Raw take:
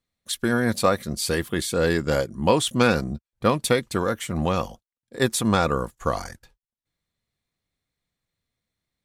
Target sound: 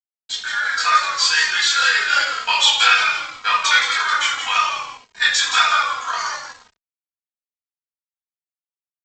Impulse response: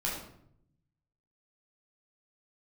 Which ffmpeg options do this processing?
-filter_complex "[0:a]agate=range=-33dB:threshold=-42dB:ratio=3:detection=peak,highpass=frequency=1300:width=0.5412,highpass=frequency=1300:width=1.3066,asplit=5[link_01][link_02][link_03][link_04][link_05];[link_02]adelay=171,afreqshift=-91,volume=-7.5dB[link_06];[link_03]adelay=342,afreqshift=-182,volume=-17.7dB[link_07];[link_04]adelay=513,afreqshift=-273,volume=-27.8dB[link_08];[link_05]adelay=684,afreqshift=-364,volume=-38dB[link_09];[link_01][link_06][link_07][link_08][link_09]amix=inputs=5:normalize=0,dynaudnorm=framelen=170:gausssize=11:maxgain=8dB,equalizer=frequency=3000:width_type=o:width=0.85:gain=2.5,asplit=2[link_10][link_11];[link_11]alimiter=limit=-10dB:level=0:latency=1:release=304,volume=-1dB[link_12];[link_10][link_12]amix=inputs=2:normalize=0[link_13];[1:a]atrim=start_sample=2205[link_14];[link_13][link_14]afir=irnorm=-1:irlink=0,aresample=16000,aeval=exprs='sgn(val(0))*max(abs(val(0))-0.0188,0)':channel_layout=same,aresample=44100,asplit=2[link_15][link_16];[link_16]adelay=2.9,afreqshift=-1.9[link_17];[link_15][link_17]amix=inputs=2:normalize=1"

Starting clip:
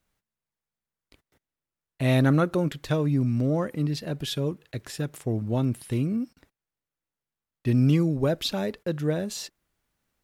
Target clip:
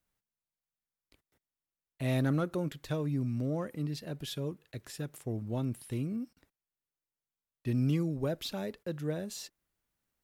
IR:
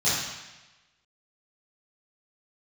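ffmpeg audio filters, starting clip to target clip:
-filter_complex "[0:a]highshelf=frequency=9200:gain=6,acrossover=split=630[link_01][link_02];[link_02]asoftclip=type=tanh:threshold=-23dB[link_03];[link_01][link_03]amix=inputs=2:normalize=0,volume=-8.5dB"

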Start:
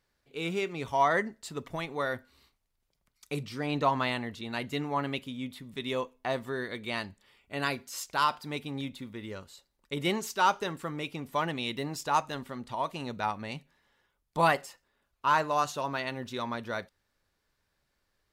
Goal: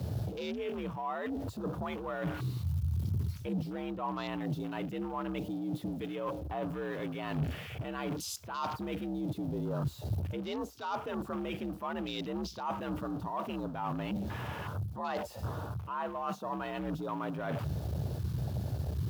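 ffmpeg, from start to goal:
ffmpeg -i in.wav -af "aeval=exprs='val(0)+0.5*0.0251*sgn(val(0))':channel_layout=same,asetrate=42336,aresample=44100,afwtdn=0.0141,areverse,acompressor=threshold=-35dB:ratio=10,areverse,afreqshift=60,equalizer=frequency=125:width_type=o:width=1:gain=8,equalizer=frequency=250:width_type=o:width=1:gain=-5,equalizer=frequency=500:width_type=o:width=1:gain=-3,equalizer=frequency=2000:width_type=o:width=1:gain=-11,equalizer=frequency=8000:width_type=o:width=1:gain=-7,volume=5dB" out.wav

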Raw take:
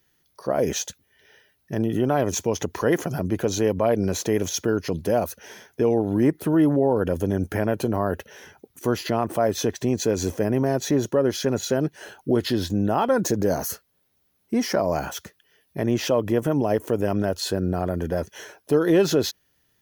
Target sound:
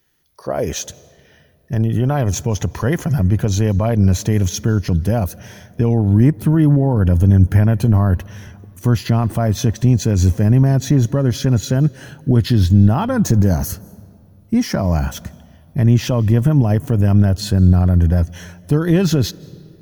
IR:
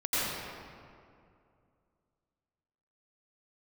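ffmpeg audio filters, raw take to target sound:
-filter_complex "[0:a]asplit=2[link_01][link_02];[1:a]atrim=start_sample=2205,highshelf=frequency=10000:gain=6.5,adelay=73[link_03];[link_02][link_03]afir=irnorm=-1:irlink=0,volume=-33.5dB[link_04];[link_01][link_04]amix=inputs=2:normalize=0,asubboost=boost=10.5:cutoff=130,volume=2.5dB"

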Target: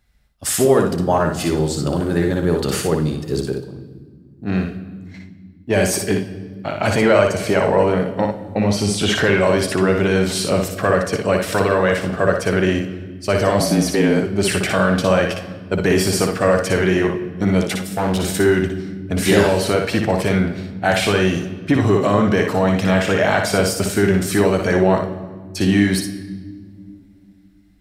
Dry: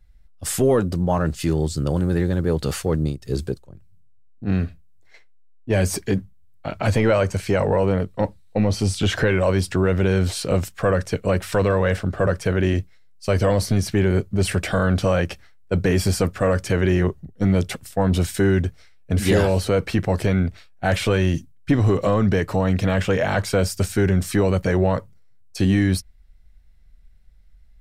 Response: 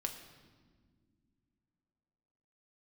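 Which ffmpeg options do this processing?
-filter_complex "[0:a]asplit=2[link_01][link_02];[1:a]atrim=start_sample=2205,adelay=59[link_03];[link_02][link_03]afir=irnorm=-1:irlink=0,volume=-3.5dB[link_04];[link_01][link_04]amix=inputs=2:normalize=0,asettb=1/sr,asplit=3[link_05][link_06][link_07];[link_05]atrim=end=13.604[link_08];[link_06]atrim=start=13.6:end=14.23,asetpts=PTS-STARTPTS,afade=type=in:duration=0.004:curve=qsin,afade=type=out:start_time=0.626:duration=0.004:curve=qsin,afreqshift=73[link_09];[link_07]atrim=start=14.226[link_10];[link_08][link_09]acrossfade=duration=0.004:curve1=hsin:curve2=qsin[link_11];[link_11][link_10]acrossfade=duration=0.004:curve1=qsin:curve2=hsin,asettb=1/sr,asplit=3[link_12][link_13][link_14];[link_12]atrim=end=17.744[link_15];[link_13]atrim=start=17.74:end=18.23,asetpts=PTS-STARTPTS,afade=type=in:duration=0.004:curve=qsin,afade=type=out:start_time=0.486:duration=0.004:curve=qsin,asoftclip=type=hard:threshold=-16.5dB[link_16];[link_14]atrim=start=18.226[link_17];[link_15][link_16]acrossfade=duration=0.004:curve1=hsin:curve2=qsin[link_18];[link_18][link_17]acrossfade=duration=0.004:curve1=qsin:curve2=hsin,highpass=frequency=250:poles=1,bandreject=frequency=500:width=12,volume=5dB"

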